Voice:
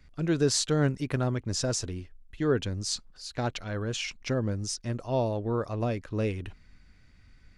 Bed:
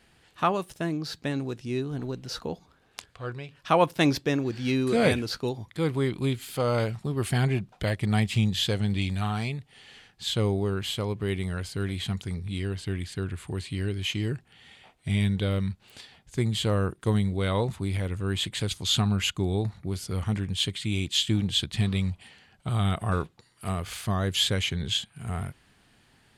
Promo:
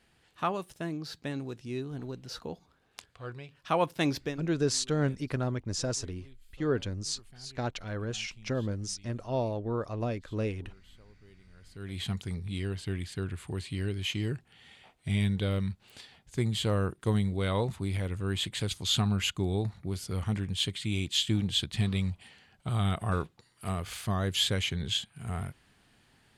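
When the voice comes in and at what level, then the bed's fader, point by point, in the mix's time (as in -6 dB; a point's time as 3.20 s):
4.20 s, -3.0 dB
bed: 4.27 s -6 dB
4.50 s -29.5 dB
11.49 s -29.5 dB
12.00 s -3 dB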